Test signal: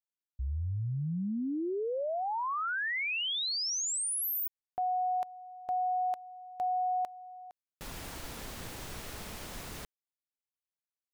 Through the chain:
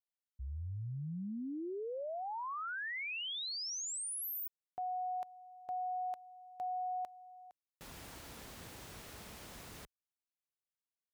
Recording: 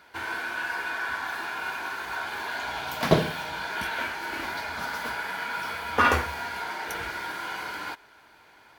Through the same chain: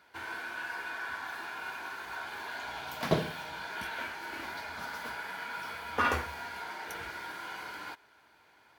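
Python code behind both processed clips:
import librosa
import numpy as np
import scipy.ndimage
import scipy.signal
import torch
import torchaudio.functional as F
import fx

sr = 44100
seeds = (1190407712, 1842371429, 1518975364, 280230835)

y = scipy.signal.sosfilt(scipy.signal.butter(2, 46.0, 'highpass', fs=sr, output='sos'), x)
y = y * 10.0 ** (-7.5 / 20.0)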